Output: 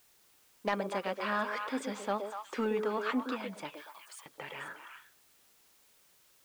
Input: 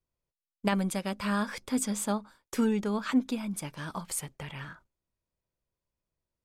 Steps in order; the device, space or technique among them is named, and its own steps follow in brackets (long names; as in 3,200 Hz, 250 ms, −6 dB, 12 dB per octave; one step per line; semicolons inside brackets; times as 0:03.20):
tape answering machine (band-pass filter 400–3,100 Hz; soft clipping −21.5 dBFS, distortion −18 dB; tape wow and flutter; white noise bed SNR 27 dB)
0:03.75–0:04.26: first difference
echo through a band-pass that steps 121 ms, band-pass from 420 Hz, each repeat 1.4 octaves, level −1.5 dB
level +1.5 dB